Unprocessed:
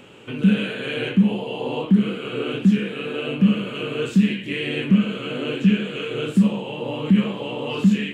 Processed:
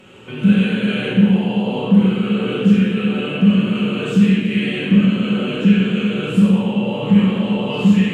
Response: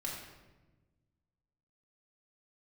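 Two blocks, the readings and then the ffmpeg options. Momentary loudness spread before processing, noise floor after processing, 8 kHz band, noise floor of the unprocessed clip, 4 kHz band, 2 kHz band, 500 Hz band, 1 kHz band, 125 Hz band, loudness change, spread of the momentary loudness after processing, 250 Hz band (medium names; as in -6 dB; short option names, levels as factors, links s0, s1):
8 LU, -27 dBFS, no reading, -34 dBFS, +3.5 dB, +3.5 dB, +3.5 dB, +4.5 dB, +5.5 dB, +5.5 dB, 5 LU, +5.5 dB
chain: -filter_complex "[1:a]atrim=start_sample=2205,asetrate=29547,aresample=44100[s0];[0:a][s0]afir=irnorm=-1:irlink=0"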